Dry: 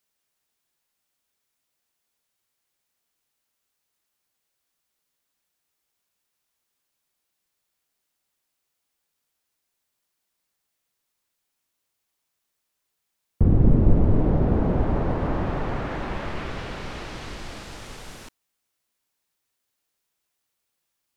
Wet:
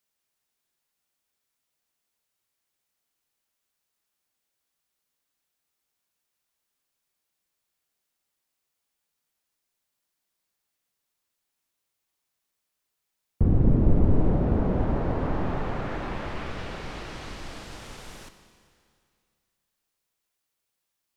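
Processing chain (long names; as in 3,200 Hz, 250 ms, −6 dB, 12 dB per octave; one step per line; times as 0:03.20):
four-comb reverb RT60 2.3 s, combs from 28 ms, DRR 9 dB
level −3 dB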